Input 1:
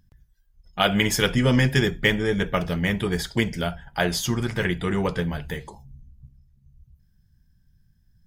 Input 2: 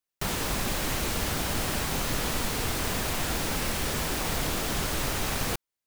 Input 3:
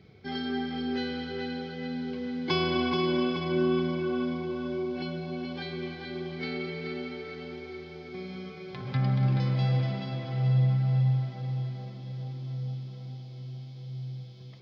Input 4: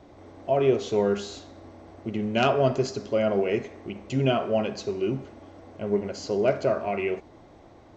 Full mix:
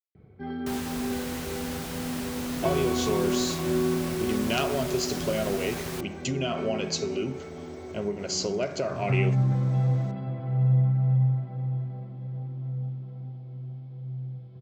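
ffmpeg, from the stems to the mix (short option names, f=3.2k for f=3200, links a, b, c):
-filter_complex "[1:a]adelay=450,volume=-7.5dB[a];[2:a]lowpass=1.3k,lowshelf=f=68:g=12,adelay=150,volume=-0.5dB[b];[3:a]tiltshelf=f=970:g=3.5,acompressor=threshold=-24dB:ratio=6,crystalizer=i=9.5:c=0,adelay=2150,volume=-3.5dB[c];[a][b][c]amix=inputs=3:normalize=0,highpass=49"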